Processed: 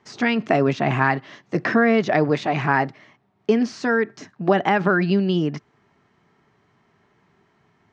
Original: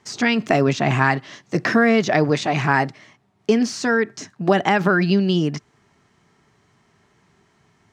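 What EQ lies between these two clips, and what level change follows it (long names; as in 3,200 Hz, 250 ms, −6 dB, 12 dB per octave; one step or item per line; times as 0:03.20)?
high-frequency loss of the air 71 metres
low-shelf EQ 110 Hz −7.5 dB
high-shelf EQ 4,400 Hz −9.5 dB
0.0 dB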